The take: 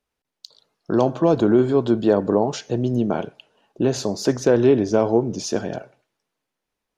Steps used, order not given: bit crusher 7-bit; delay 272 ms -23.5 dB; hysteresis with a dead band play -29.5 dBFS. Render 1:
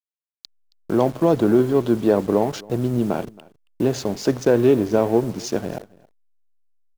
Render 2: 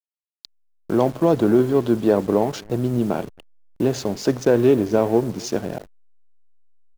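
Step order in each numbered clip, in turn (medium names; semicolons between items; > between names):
bit crusher > hysteresis with a dead band > delay; bit crusher > delay > hysteresis with a dead band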